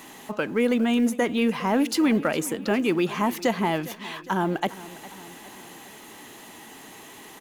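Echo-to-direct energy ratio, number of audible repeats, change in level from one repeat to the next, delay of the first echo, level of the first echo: -16.5 dB, 3, -4.5 dB, 407 ms, -18.0 dB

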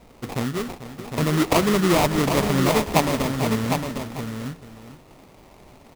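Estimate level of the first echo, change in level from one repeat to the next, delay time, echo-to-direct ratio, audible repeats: -13.0 dB, no regular repeats, 442 ms, -5.0 dB, 3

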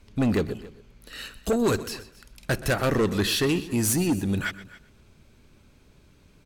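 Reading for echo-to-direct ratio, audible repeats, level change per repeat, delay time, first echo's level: -15.0 dB, 2, no regular repeats, 125 ms, -17.0 dB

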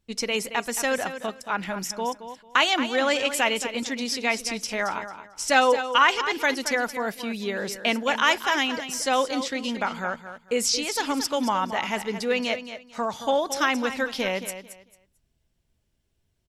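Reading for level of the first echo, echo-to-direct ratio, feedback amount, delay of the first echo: -11.0 dB, -11.0 dB, 23%, 223 ms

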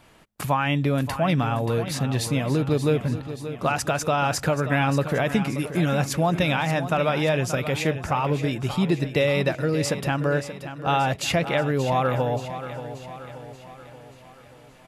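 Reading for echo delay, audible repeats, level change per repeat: 580 ms, 5, -5.5 dB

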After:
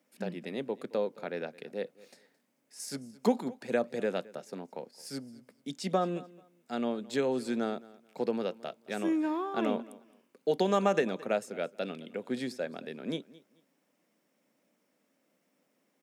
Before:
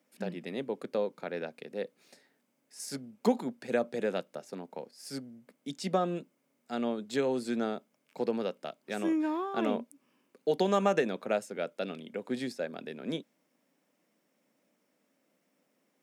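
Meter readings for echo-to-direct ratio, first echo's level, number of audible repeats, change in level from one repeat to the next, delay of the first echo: -21.0 dB, -21.0 dB, 2, -13.0 dB, 218 ms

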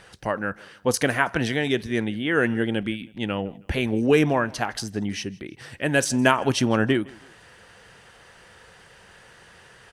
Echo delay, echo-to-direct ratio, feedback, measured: 161 ms, -23.5 dB, 38%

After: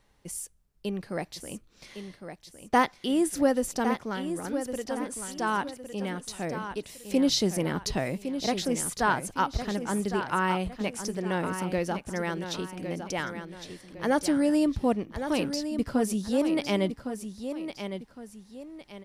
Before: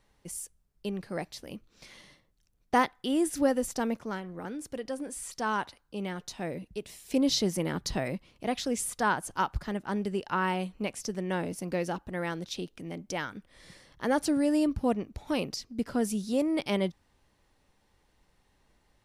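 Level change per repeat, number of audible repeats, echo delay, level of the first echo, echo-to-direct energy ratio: -9.0 dB, 2, 1109 ms, -9.0 dB, -8.5 dB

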